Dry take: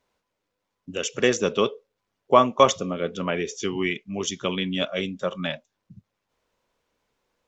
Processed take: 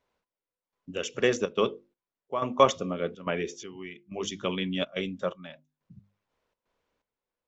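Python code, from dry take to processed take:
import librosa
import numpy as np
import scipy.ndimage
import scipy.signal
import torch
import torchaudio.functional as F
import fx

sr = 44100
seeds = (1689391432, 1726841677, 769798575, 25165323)

y = fx.lowpass(x, sr, hz=3800.0, slope=6)
y = fx.hum_notches(y, sr, base_hz=50, count=7)
y = fx.step_gate(y, sr, bpm=124, pattern='xx....xxxxxx.x', floor_db=-12.0, edge_ms=4.5)
y = F.gain(torch.from_numpy(y), -3.0).numpy()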